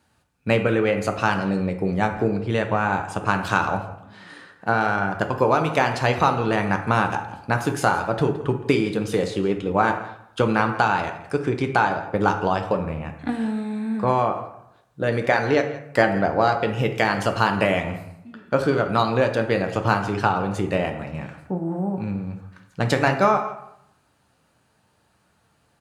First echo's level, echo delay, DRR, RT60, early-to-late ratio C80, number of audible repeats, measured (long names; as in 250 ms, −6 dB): −17.0 dB, 168 ms, 4.5 dB, 0.75 s, 10.5 dB, 1